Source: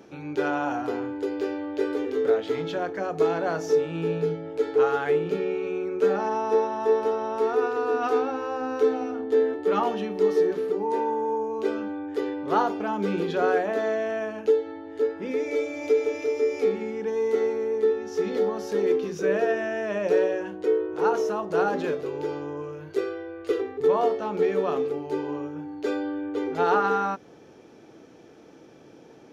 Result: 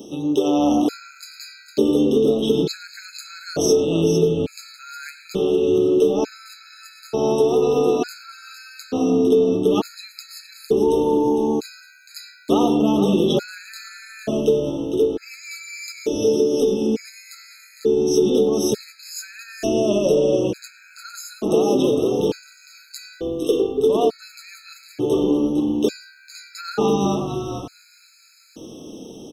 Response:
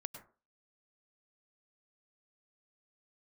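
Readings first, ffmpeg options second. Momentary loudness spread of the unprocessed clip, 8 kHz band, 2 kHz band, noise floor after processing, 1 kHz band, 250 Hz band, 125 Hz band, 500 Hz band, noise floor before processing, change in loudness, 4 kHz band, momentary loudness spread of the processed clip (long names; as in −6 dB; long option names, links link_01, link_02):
7 LU, can't be measured, −3.5 dB, −50 dBFS, −2.0 dB, +10.0 dB, +10.0 dB, +3.5 dB, −50 dBFS, +6.0 dB, +12.5 dB, 20 LU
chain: -filter_complex "[0:a]equalizer=frequency=125:width_type=o:width=1:gain=-6,equalizer=frequency=250:width_type=o:width=1:gain=5,equalizer=frequency=1000:width_type=o:width=1:gain=-8,equalizer=frequency=2000:width_type=o:width=1:gain=-12,acompressor=threshold=-25dB:ratio=6,aexciter=amount=6.9:drive=4.1:freq=2700,asplit=5[link_01][link_02][link_03][link_04][link_05];[link_02]adelay=456,afreqshift=-75,volume=-8.5dB[link_06];[link_03]adelay=912,afreqshift=-150,volume=-17.4dB[link_07];[link_04]adelay=1368,afreqshift=-225,volume=-26.2dB[link_08];[link_05]adelay=1824,afreqshift=-300,volume=-35.1dB[link_09];[link_01][link_06][link_07][link_08][link_09]amix=inputs=5:normalize=0,asplit=2[link_10][link_11];[1:a]atrim=start_sample=2205,lowpass=3600[link_12];[link_11][link_12]afir=irnorm=-1:irlink=0,volume=4.5dB[link_13];[link_10][link_13]amix=inputs=2:normalize=0,afftfilt=real='re*gt(sin(2*PI*0.56*pts/sr)*(1-2*mod(floor(b*sr/1024/1300),2)),0)':imag='im*gt(sin(2*PI*0.56*pts/sr)*(1-2*mod(floor(b*sr/1024/1300),2)),0)':win_size=1024:overlap=0.75,volume=4.5dB"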